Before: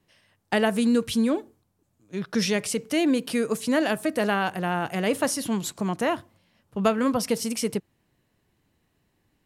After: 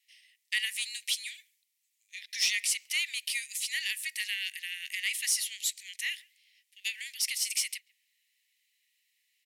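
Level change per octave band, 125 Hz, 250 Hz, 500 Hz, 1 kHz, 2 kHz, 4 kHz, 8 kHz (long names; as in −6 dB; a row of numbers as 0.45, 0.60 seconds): below −40 dB, below −40 dB, below −40 dB, below −35 dB, −2.0 dB, +2.5 dB, +2.5 dB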